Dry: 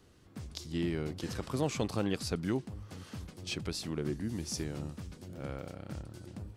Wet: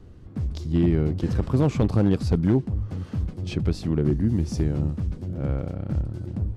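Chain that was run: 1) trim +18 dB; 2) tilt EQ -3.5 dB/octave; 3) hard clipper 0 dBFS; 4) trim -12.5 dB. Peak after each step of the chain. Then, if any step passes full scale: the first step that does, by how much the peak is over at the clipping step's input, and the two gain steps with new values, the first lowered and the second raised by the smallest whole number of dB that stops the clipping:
-1.0 dBFS, +6.0 dBFS, 0.0 dBFS, -12.5 dBFS; step 2, 6.0 dB; step 1 +12 dB, step 4 -6.5 dB

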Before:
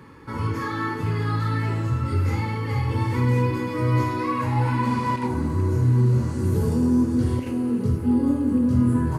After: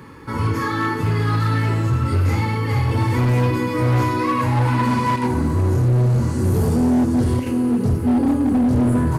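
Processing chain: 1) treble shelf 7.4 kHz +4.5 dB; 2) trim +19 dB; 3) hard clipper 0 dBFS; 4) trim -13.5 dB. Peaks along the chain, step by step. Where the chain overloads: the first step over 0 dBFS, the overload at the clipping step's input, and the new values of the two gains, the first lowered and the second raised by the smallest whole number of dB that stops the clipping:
-9.5 dBFS, +9.5 dBFS, 0.0 dBFS, -13.5 dBFS; step 2, 9.5 dB; step 2 +9 dB, step 4 -3.5 dB

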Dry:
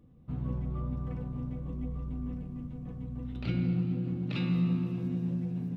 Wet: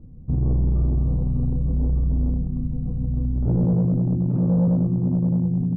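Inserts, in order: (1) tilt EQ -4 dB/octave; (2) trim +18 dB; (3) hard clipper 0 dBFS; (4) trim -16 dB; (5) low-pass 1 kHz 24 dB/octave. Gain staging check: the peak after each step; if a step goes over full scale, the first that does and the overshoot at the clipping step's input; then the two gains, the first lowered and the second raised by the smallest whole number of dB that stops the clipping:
-9.5 dBFS, +8.5 dBFS, 0.0 dBFS, -16.0 dBFS, -15.5 dBFS; step 2, 8.5 dB; step 2 +9 dB, step 4 -7 dB

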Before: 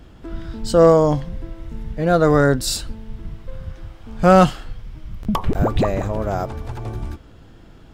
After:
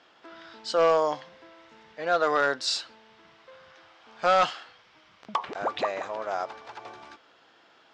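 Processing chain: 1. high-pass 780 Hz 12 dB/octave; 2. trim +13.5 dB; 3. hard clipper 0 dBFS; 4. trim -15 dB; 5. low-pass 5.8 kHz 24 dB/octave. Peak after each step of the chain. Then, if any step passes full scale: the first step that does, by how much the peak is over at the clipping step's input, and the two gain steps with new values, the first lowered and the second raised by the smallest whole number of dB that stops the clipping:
-5.0 dBFS, +8.5 dBFS, 0.0 dBFS, -15.0 dBFS, -14.0 dBFS; step 2, 8.5 dB; step 2 +4.5 dB, step 4 -6 dB

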